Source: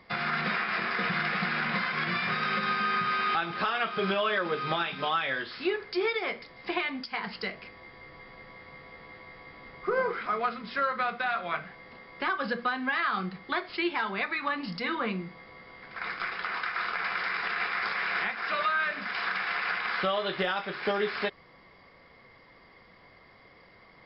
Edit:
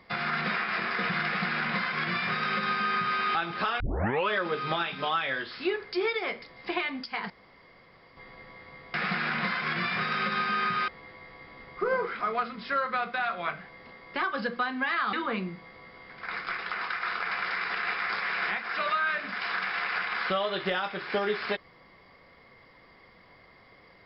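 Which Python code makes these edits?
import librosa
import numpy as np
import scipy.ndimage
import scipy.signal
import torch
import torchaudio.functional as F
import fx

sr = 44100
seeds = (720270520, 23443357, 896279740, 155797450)

y = fx.edit(x, sr, fx.duplicate(start_s=1.25, length_s=1.94, to_s=8.94),
    fx.tape_start(start_s=3.8, length_s=0.49),
    fx.room_tone_fill(start_s=7.3, length_s=0.87),
    fx.cut(start_s=13.19, length_s=1.67), tone=tone)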